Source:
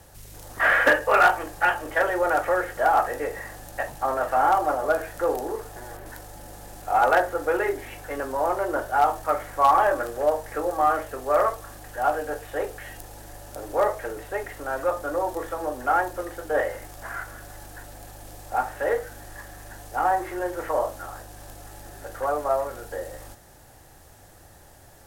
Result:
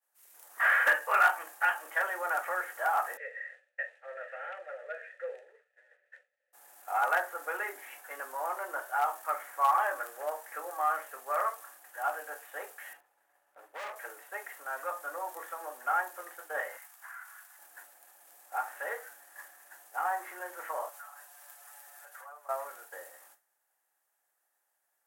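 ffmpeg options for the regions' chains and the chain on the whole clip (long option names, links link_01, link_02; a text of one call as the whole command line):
ffmpeg -i in.wav -filter_complex "[0:a]asettb=1/sr,asplit=3[link_01][link_02][link_03];[link_01]atrim=end=3.174[link_04];[link_02]atrim=start=3.17:end=6.53,asetpts=PTS-STARTPTS,afade=type=in:duration=0.004:curve=qsin,afade=type=out:start_time=3.356:duration=0.004:curve=qsin,acontrast=40,asplit=3[link_05][link_06][link_07];[link_05]bandpass=frequency=530:width_type=q:width=8,volume=0dB[link_08];[link_06]bandpass=frequency=1840:width_type=q:width=8,volume=-6dB[link_09];[link_07]bandpass=frequency=2480:width_type=q:width=8,volume=-9dB[link_10];[link_08][link_09][link_10]amix=inputs=3:normalize=0,highpass=frequency=390:width=0.5412,highpass=frequency=390:width=1.3066,equalizer=frequency=780:width_type=q:width=4:gain=-7,equalizer=frequency=1300:width_type=q:width=4:gain=7,equalizer=frequency=2100:width_type=q:width=4:gain=7,equalizer=frequency=3700:width_type=q:width=4:gain=5,lowpass=frequency=9200:width=0.5412,lowpass=frequency=9200:width=1.3066[link_11];[link_03]atrim=start=6.526[link_12];[link_04][link_11]acrossfade=duration=0.004:curve1=hsin:curve2=qsin[link_13];[link_13][link_12]acrossfade=duration=0.004:curve1=qsin:curve2=hsin,asettb=1/sr,asplit=3[link_14][link_15][link_16];[link_14]atrim=end=12.934[link_17];[link_15]atrim=start=12.93:end=13.96,asetpts=PTS-STARTPTS,afade=type=in:duration=0.004:curve=qsin,afade=type=out:start_time=1.026:duration=0.004:curve=qsin,acrossover=split=3100[link_18][link_19];[link_19]acompressor=threshold=-59dB:ratio=4:attack=1:release=60[link_20];[link_18][link_20]amix=inputs=2:normalize=0,asoftclip=type=hard:threshold=-27.5dB[link_21];[link_16]atrim=start=13.956[link_22];[link_17][link_21]acrossfade=duration=0.004:curve1=hsin:curve2=qsin[link_23];[link_23][link_22]acrossfade=duration=0.004:curve1=qsin:curve2=hsin,asettb=1/sr,asplit=3[link_24][link_25][link_26];[link_24]atrim=end=16.774[link_27];[link_25]atrim=start=16.77:end=17.59,asetpts=PTS-STARTPTS,afade=type=in:duration=0.004:curve=qsin,afade=type=out:start_time=0.816:duration=0.004:curve=qsin,highpass=frequency=850:width=0.5412,highpass=frequency=850:width=1.3066,acompressor=threshold=-37dB:ratio=5:attack=3.2:release=140:knee=1:detection=peak[link_28];[link_26]atrim=start=17.586[link_29];[link_27][link_28]acrossfade=duration=0.004:curve1=hsin:curve2=qsin[link_30];[link_30][link_29]acrossfade=duration=0.004:curve1=qsin:curve2=hsin,asettb=1/sr,asplit=3[link_31][link_32][link_33];[link_31]atrim=end=20.894[link_34];[link_32]atrim=start=20.89:end=22.49,asetpts=PTS-STARTPTS,afade=type=in:duration=0.004:curve=qsin,afade=type=out:start_time=1.596:duration=0.004:curve=qsin,highpass=670,aecho=1:1:6.9:0.86,atrim=end_sample=70560,acompressor=threshold=-38dB:ratio=4:attack=3.2:release=140:knee=1:detection=peak[link_35];[link_33]atrim=start=22.486[link_36];[link_34][link_35]acrossfade=duration=0.004:curve1=hsin:curve2=qsin[link_37];[link_37][link_36]acrossfade=duration=0.004:curve1=qsin:curve2=hsin,highpass=1300,agate=range=-33dB:threshold=-43dB:ratio=3:detection=peak,equalizer=frequency=4300:width_type=o:width=1.8:gain=-11.5" out.wav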